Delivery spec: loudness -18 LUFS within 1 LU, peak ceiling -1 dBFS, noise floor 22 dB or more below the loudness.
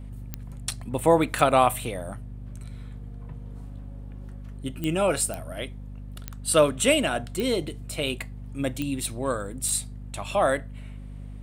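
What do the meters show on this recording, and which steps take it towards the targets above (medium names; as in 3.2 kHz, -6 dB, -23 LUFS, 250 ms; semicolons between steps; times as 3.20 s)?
clicks found 8; hum 50 Hz; highest harmonic 250 Hz; hum level -36 dBFS; loudness -25.5 LUFS; peak level -5.5 dBFS; loudness target -18.0 LUFS
-> de-click; de-hum 50 Hz, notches 5; trim +7.5 dB; peak limiter -1 dBFS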